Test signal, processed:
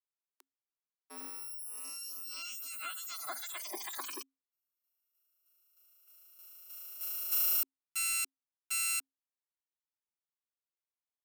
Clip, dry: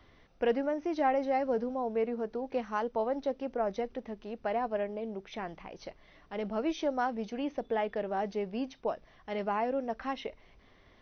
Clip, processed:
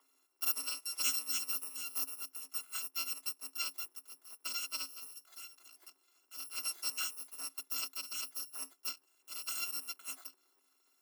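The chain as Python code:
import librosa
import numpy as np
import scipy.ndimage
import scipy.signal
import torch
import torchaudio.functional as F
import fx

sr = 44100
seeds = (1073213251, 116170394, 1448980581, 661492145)

y = fx.bit_reversed(x, sr, seeds[0], block=256)
y = scipy.signal.sosfilt(scipy.signal.cheby1(6, 9, 260.0, 'highpass', fs=sr, output='sos'), y)
y = fx.upward_expand(y, sr, threshold_db=-47.0, expansion=1.5)
y = y * librosa.db_to_amplitude(4.0)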